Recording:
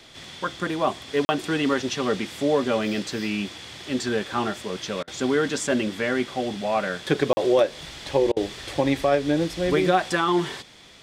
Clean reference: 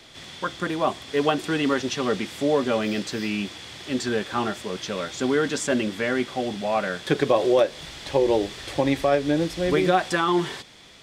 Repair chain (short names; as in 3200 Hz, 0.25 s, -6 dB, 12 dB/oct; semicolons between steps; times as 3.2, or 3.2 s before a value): interpolate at 1.25/7.33, 40 ms; interpolate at 5.03/8.32, 44 ms